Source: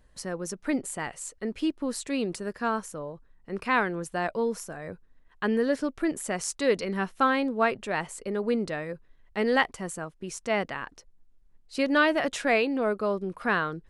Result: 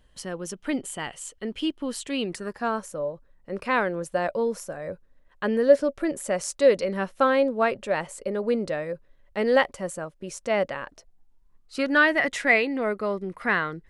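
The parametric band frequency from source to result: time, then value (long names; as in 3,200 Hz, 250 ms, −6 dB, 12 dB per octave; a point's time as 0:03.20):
parametric band +13.5 dB 0.23 octaves
0:02.21 3,100 Hz
0:02.68 560 Hz
0:10.84 560 Hz
0:12.20 2,000 Hz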